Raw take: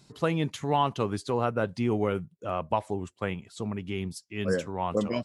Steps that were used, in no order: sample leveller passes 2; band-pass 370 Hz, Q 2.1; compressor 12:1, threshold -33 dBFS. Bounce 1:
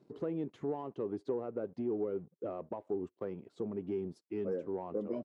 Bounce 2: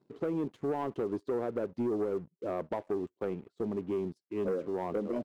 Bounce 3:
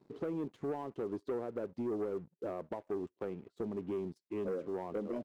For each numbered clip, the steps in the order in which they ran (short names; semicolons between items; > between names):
compressor > sample leveller > band-pass; band-pass > compressor > sample leveller; compressor > band-pass > sample leveller